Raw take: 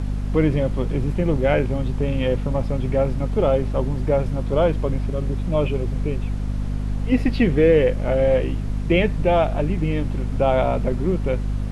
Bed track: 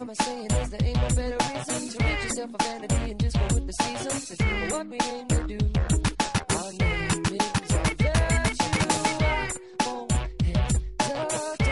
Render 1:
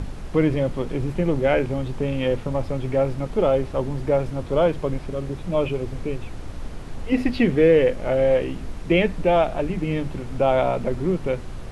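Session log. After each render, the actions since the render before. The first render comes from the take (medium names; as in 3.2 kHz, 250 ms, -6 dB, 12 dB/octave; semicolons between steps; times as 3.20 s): hum notches 50/100/150/200/250 Hz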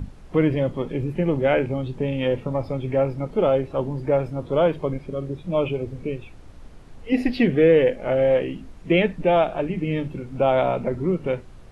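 noise print and reduce 11 dB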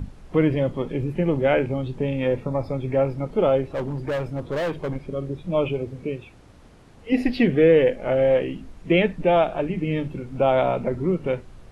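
2.13–2.94 s: band-stop 3 kHz, Q 5.1; 3.67–5.03 s: overload inside the chain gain 22.5 dB; 5.83–7.10 s: high-pass 88 Hz 6 dB/octave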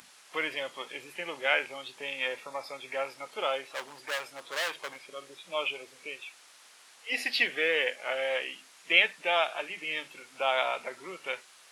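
high-pass 1.2 kHz 12 dB/octave; treble shelf 3 kHz +11.5 dB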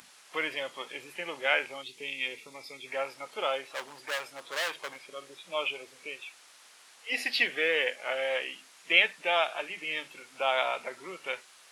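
1.83–2.86 s: time-frequency box 480–1900 Hz -12 dB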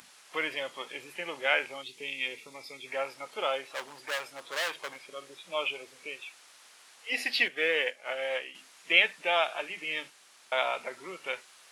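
7.48–8.55 s: upward expansion, over -43 dBFS; 10.10–10.52 s: room tone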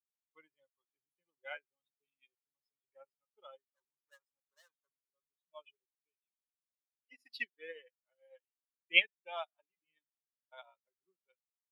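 expander on every frequency bin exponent 2; upward expansion 2.5:1, over -47 dBFS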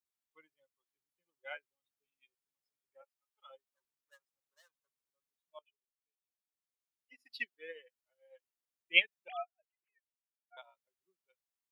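3.01–3.49 s: high-pass 530 Hz -> 980 Hz 24 dB/octave; 5.59–7.28 s: fade in, from -15.5 dB; 9.28–10.57 s: formants replaced by sine waves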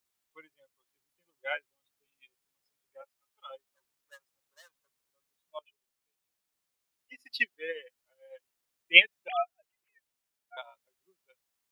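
trim +10.5 dB; peak limiter -1 dBFS, peak gain reduction 2.5 dB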